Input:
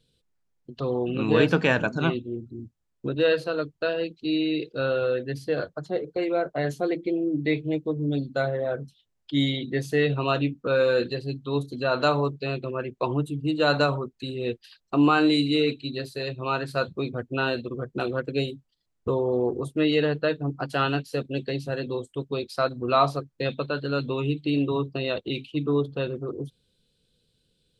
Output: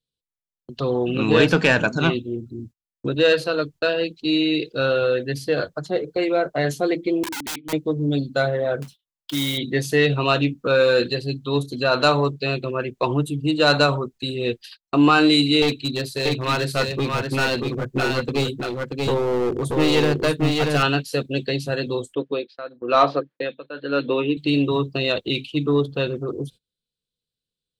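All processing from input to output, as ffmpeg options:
ffmpeg -i in.wav -filter_complex "[0:a]asettb=1/sr,asplit=3[link_01][link_02][link_03];[link_01]atrim=end=7.234[link_04];[link_02]atrim=start=7.23:end=7.73,asetpts=PTS-STARTPTS,afade=type=in:duration=0.004:curve=qsin,afade=type=out:start_time=0.496:duration=0.004:curve=qsin,asplit=3[link_05][link_06][link_07];[link_05]bandpass=frequency=270:width_type=q:width=8,volume=0dB[link_08];[link_06]bandpass=frequency=2290:width_type=q:width=8,volume=-6dB[link_09];[link_07]bandpass=frequency=3010:width_type=q:width=8,volume=-9dB[link_10];[link_08][link_09][link_10]amix=inputs=3:normalize=0,aeval=exprs='(mod(44.7*val(0)+1,2)-1)/44.7':channel_layout=same[link_11];[link_03]atrim=start=7.726[link_12];[link_04][link_11]acrossfade=duration=0.004:curve1=hsin:curve2=qsin[link_13];[link_13][link_12]acrossfade=duration=0.004:curve1=qsin:curve2=hsin,asettb=1/sr,asplit=3[link_14][link_15][link_16];[link_14]atrim=end=8.824[link_17];[link_15]atrim=start=8.82:end=9.58,asetpts=PTS-STARTPTS,afade=type=in:duration=0.004:curve=qsin,afade=type=out:start_time=0.756:duration=0.004:curve=qsin,acompressor=threshold=-29dB:ratio=2.5:attack=3.2:release=140:knee=1:detection=peak,equalizer=frequency=1100:width=1.3:gain=9,acrusher=bits=3:mode=log:mix=0:aa=0.000001[link_18];[link_16]atrim=start=9.576[link_19];[link_17][link_18]acrossfade=duration=0.004:curve1=hsin:curve2=qsin[link_20];[link_20][link_19]acrossfade=duration=0.004:curve1=qsin:curve2=hsin,asettb=1/sr,asplit=3[link_21][link_22][link_23];[link_21]atrim=end=15.624[link_24];[link_22]atrim=start=15.62:end=20.83,asetpts=PTS-STARTPTS,afade=type=in:duration=0.004:curve=qsin,afade=type=out:start_time=5.206:duration=0.004:curve=qsin,lowshelf=frequency=190:gain=4,aeval=exprs='clip(val(0),-1,0.0562)':channel_layout=same,aecho=1:1:633:0.668,atrim=end_sample=229761[link_25];[link_23]atrim=start=20.826[link_26];[link_24][link_25]acrossfade=duration=0.004:curve1=hsin:curve2=qsin[link_27];[link_27][link_26]acrossfade=duration=0.004:curve1=qsin:curve2=hsin,asettb=1/sr,asplit=3[link_28][link_29][link_30];[link_28]atrim=end=22.144[link_31];[link_29]atrim=start=22.14:end=24.37,asetpts=PTS-STARTPTS,afade=type=in:duration=0.004:curve=qsin,afade=type=out:start_time=2.226:duration=0.004:curve=qsin,highpass=230,equalizer=frequency=300:width_type=q:width=4:gain=6,equalizer=frequency=510:width_type=q:width=4:gain=7,equalizer=frequency=1700:width_type=q:width=4:gain=7,lowpass=frequency=3700:width=0.5412,lowpass=frequency=3700:width=1.3066,tremolo=f=1:d=0.88[link_32];[link_30]atrim=start=24.366[link_33];[link_31][link_32]acrossfade=duration=0.004:curve1=hsin:curve2=qsin[link_34];[link_34][link_33]acrossfade=duration=0.004:curve1=qsin:curve2=hsin,highshelf=frequency=2300:gain=7,acontrast=80,agate=range=-26dB:threshold=-38dB:ratio=16:detection=peak,volume=-2.5dB" out.wav

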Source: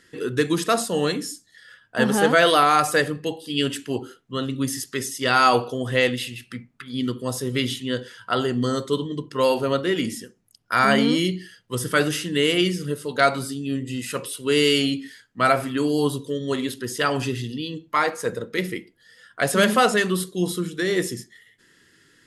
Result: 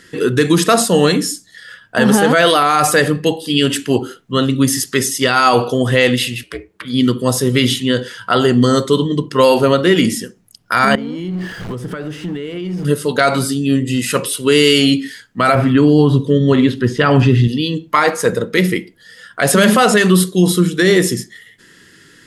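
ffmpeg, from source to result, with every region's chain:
ffmpeg -i in.wav -filter_complex "[0:a]asettb=1/sr,asplit=3[link_01][link_02][link_03];[link_01]atrim=end=6.434[link_04];[link_02]atrim=start=6.43:end=6.85,asetpts=PTS-STARTPTS,afade=type=in:duration=0.004:curve=qsin,afade=type=out:start_time=0.416:duration=0.004:curve=qsin,aeval=exprs='val(0)*sin(2*PI*190*n/s)':channel_layout=same,highpass=frequency=85:width=0.5412,highpass=frequency=85:width=1.3066[link_05];[link_03]atrim=start=6.846[link_06];[link_04][link_05]acrossfade=duration=0.004:curve1=hsin:curve2=qsin[link_07];[link_07][link_06]acrossfade=duration=0.004:curve1=qsin:curve2=hsin,asettb=1/sr,asplit=3[link_08][link_09][link_10];[link_08]atrim=end=10.954[link_11];[link_09]atrim=start=10.95:end=12.85,asetpts=PTS-STARTPTS,afade=type=in:duration=0.004:curve=qsin,afade=type=out:start_time=1.896:duration=0.004:curve=qsin,aeval=exprs='val(0)+0.5*0.0282*sgn(val(0))':channel_layout=same,acompressor=threshold=-32dB:ratio=10:attack=3.2:release=140:knee=1:detection=peak,lowpass=frequency=1100:poles=1[link_12];[link_10]atrim=start=12.846[link_13];[link_11][link_12]acrossfade=duration=0.004:curve1=hsin:curve2=qsin[link_14];[link_14][link_13]acrossfade=duration=0.004:curve1=qsin:curve2=hsin,asettb=1/sr,asplit=3[link_15][link_16][link_17];[link_15]atrim=end=15.554[link_18];[link_16]atrim=start=15.55:end=17.48,asetpts=PTS-STARTPTS,afade=type=in:duration=0.004:curve=qsin,afade=type=out:start_time=1.926:duration=0.004:curve=qsin,bass=frequency=250:gain=8,treble=frequency=4000:gain=-11,acrossover=split=6300[link_19][link_20];[link_20]acompressor=threshold=-60dB:ratio=4:attack=1:release=60[link_21];[link_19][link_21]amix=inputs=2:normalize=0[link_22];[link_17]atrim=start=17.476[link_23];[link_18][link_22]acrossfade=duration=0.004:curve1=hsin:curve2=qsin[link_24];[link_24][link_23]acrossfade=duration=0.004:curve1=qsin:curve2=hsin,equalizer=frequency=180:width=4:gain=4,alimiter=level_in=12.5dB:limit=-1dB:release=50:level=0:latency=1,volume=-1dB" out.wav

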